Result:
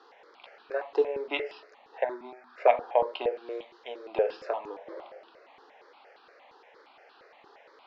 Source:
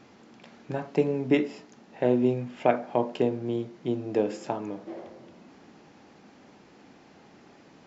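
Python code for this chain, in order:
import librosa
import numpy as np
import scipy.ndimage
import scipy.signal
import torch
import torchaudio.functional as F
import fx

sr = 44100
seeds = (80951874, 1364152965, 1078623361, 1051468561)

y = scipy.signal.sosfilt(scipy.signal.ellip(3, 1.0, 50, [460.0, 4500.0], 'bandpass', fs=sr, output='sos'), x)
y = fx.fixed_phaser(y, sr, hz=1200.0, stages=4, at=(2.04, 2.58))
y = fx.tilt_shelf(y, sr, db=-4.0, hz=970.0, at=(3.36, 4.08))
y = fx.phaser_held(y, sr, hz=8.6, low_hz=610.0, high_hz=2100.0)
y = y * librosa.db_to_amplitude(5.0)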